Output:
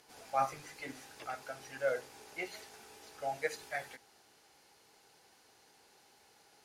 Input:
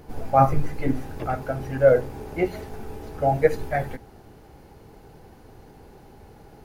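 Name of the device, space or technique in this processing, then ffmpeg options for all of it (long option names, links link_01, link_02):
piezo pickup straight into a mixer: -af "lowpass=6900,aderivative,volume=4.5dB"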